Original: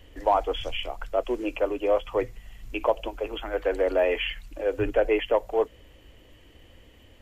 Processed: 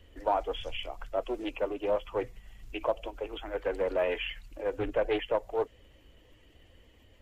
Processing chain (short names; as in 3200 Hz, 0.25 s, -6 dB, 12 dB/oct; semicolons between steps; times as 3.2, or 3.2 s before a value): bin magnitudes rounded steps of 15 dB; Doppler distortion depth 0.43 ms; gain -5.5 dB